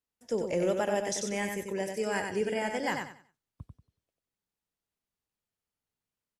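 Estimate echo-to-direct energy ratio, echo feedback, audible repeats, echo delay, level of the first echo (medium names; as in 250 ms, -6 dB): -4.5 dB, 27%, 3, 93 ms, -5.0 dB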